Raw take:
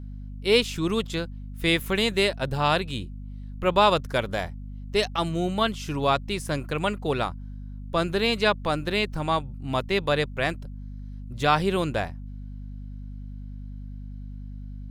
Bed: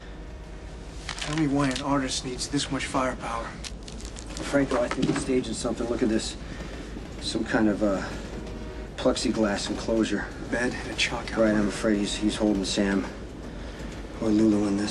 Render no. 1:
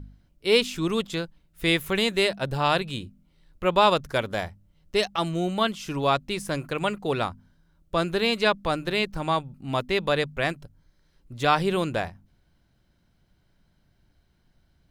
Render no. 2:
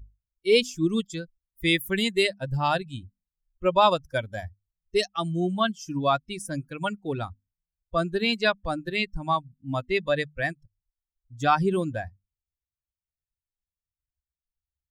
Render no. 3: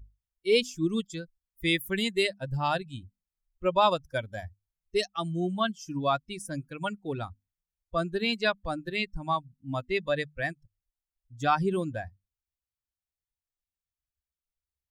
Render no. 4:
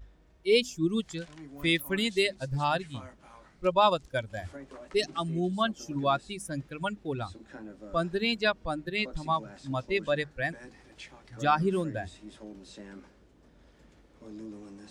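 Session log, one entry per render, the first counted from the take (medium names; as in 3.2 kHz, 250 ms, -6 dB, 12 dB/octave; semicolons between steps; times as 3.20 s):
de-hum 50 Hz, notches 5
expander on every frequency bin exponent 2; in parallel at -2 dB: peak limiter -19.5 dBFS, peak gain reduction 11.5 dB
trim -3.5 dB
add bed -22 dB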